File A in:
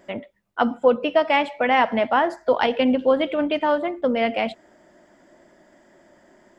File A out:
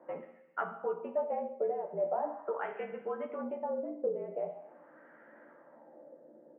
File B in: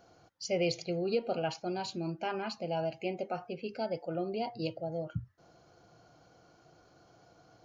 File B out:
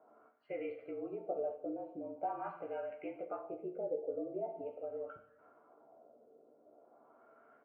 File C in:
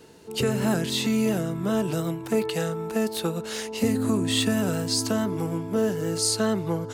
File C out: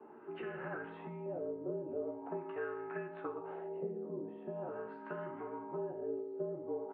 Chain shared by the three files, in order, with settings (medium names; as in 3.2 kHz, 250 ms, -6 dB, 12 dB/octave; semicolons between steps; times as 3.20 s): compression 3:1, threshold -36 dBFS; doubling 14 ms -5 dB; two-slope reverb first 0.85 s, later 2.4 s, from -27 dB, DRR 5.5 dB; mistuned SSB -50 Hz 300–2900 Hz; LFO low-pass sine 0.43 Hz 480–1600 Hz; trim -6 dB